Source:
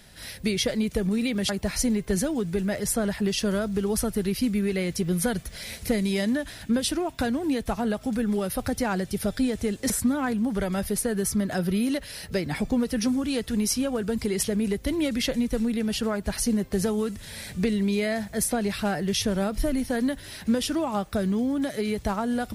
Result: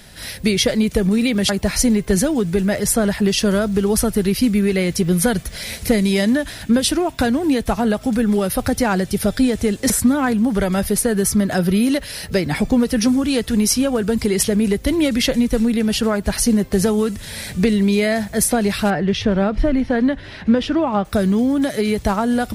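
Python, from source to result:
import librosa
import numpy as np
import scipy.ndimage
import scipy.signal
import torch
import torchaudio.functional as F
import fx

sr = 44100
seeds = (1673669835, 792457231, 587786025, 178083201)

y = fx.lowpass(x, sr, hz=2800.0, slope=12, at=(18.9, 21.05))
y = y * 10.0 ** (8.5 / 20.0)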